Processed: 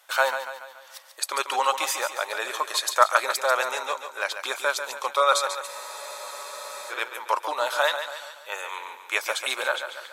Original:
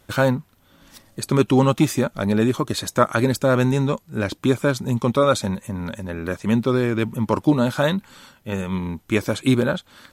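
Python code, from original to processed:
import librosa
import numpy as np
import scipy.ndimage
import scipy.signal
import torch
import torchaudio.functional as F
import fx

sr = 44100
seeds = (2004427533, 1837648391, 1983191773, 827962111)

y = scipy.signal.sosfilt(scipy.signal.cheby2(4, 60, 200.0, 'highpass', fs=sr, output='sos'), x)
y = fx.echo_feedback(y, sr, ms=142, feedback_pct=49, wet_db=-9.0)
y = fx.spec_freeze(y, sr, seeds[0], at_s=5.69, hold_s=1.22)
y = F.gain(torch.from_numpy(y), 2.0).numpy()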